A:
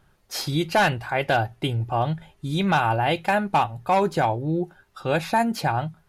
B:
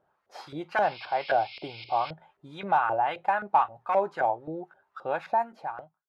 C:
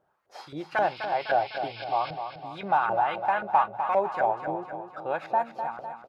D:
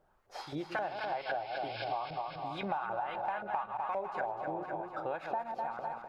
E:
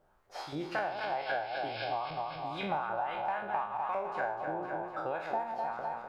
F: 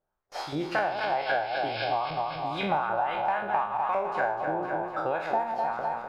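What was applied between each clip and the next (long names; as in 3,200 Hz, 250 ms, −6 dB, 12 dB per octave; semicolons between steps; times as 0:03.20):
fade-out on the ending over 0.94 s; sound drawn into the spectrogram noise, 0:00.82–0:02.11, 2,100–5,400 Hz −30 dBFS; auto-filter band-pass saw up 3.8 Hz 520–1,500 Hz; level +1 dB
repeating echo 252 ms, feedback 54%, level −8.5 dB
delay that plays each chunk backwards 111 ms, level −10 dB; downward compressor 6 to 1, threshold −33 dBFS, peak gain reduction 15 dB; background noise brown −75 dBFS
peak hold with a decay on every bin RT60 0.51 s
noise gate with hold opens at −51 dBFS; level +6.5 dB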